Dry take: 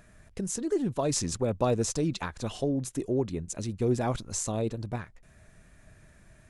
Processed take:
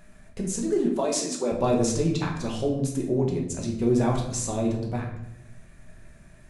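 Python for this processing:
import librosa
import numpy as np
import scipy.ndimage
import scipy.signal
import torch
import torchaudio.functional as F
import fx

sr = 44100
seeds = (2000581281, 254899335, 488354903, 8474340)

y = fx.highpass(x, sr, hz=260.0, slope=24, at=(0.86, 1.52))
y = fx.room_shoebox(y, sr, seeds[0], volume_m3=210.0, walls='mixed', distance_m=1.1)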